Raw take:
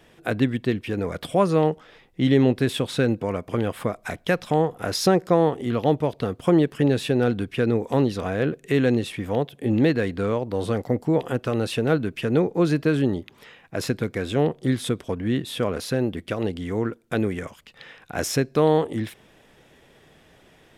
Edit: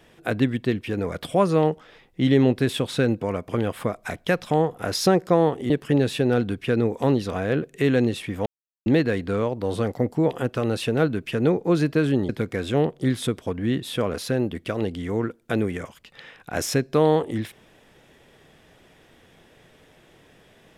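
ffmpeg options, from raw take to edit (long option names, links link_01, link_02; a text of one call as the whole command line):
ffmpeg -i in.wav -filter_complex "[0:a]asplit=5[link_01][link_02][link_03][link_04][link_05];[link_01]atrim=end=5.702[link_06];[link_02]atrim=start=6.598:end=9.36,asetpts=PTS-STARTPTS,afade=type=out:start_time=2.758:duration=0.004:curve=hsin[link_07];[link_03]atrim=start=9.36:end=9.76,asetpts=PTS-STARTPTS,volume=0[link_08];[link_04]atrim=start=9.76:end=13.192,asetpts=PTS-STARTPTS,afade=type=in:duration=0.004:curve=hsin[link_09];[link_05]atrim=start=13.908[link_10];[link_07][link_08][link_09]concat=n=3:v=0:a=1[link_11];[link_06][link_11]acrossfade=duration=0.004:curve1=hsin:curve2=hsin[link_12];[link_12][link_10]acrossfade=duration=0.004:curve1=hsin:curve2=hsin" out.wav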